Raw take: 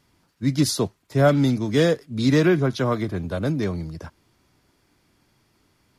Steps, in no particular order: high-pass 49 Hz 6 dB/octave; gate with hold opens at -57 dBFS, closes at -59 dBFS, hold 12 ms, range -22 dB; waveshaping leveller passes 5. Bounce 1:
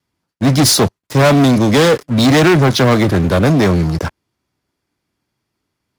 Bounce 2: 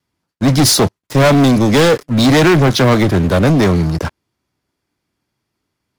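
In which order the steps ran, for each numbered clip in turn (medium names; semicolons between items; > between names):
gate with hold > waveshaping leveller > high-pass; gate with hold > high-pass > waveshaping leveller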